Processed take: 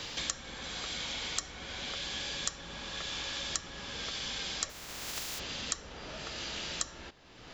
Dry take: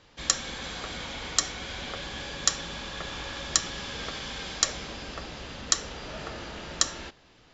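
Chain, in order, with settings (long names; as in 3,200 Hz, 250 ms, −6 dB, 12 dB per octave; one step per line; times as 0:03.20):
0:04.69–0:05.38: compressing power law on the bin magnitudes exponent 0.16
multiband upward and downward compressor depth 100%
level −7.5 dB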